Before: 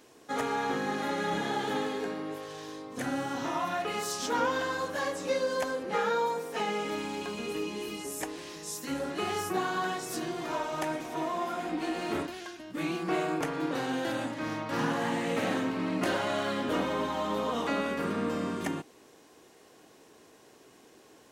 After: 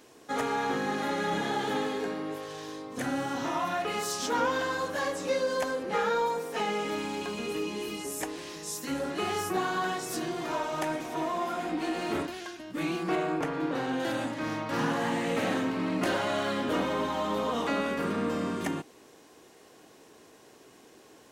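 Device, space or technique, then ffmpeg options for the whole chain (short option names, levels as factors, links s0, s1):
parallel distortion: -filter_complex "[0:a]asplit=2[s0][s1];[s1]asoftclip=type=hard:threshold=0.0237,volume=0.237[s2];[s0][s2]amix=inputs=2:normalize=0,asettb=1/sr,asplit=3[s3][s4][s5];[s3]atrim=end=13.154[s6];[s4]atrim=start=13.15:end=14,asetpts=PTS-STARTPTS,afade=t=in:d=0.004:c=qsin,afade=t=out:st=0.846:d=0.004:c=qsin,highshelf=f=4300:g=-9[s7];[s5]atrim=start=13.996[s8];[s6][s7]acrossfade=d=0.004:c1=hsin:c2=qsin[s9];[s9][s8]acrossfade=d=0.004:c1=qsin:c2=hsin"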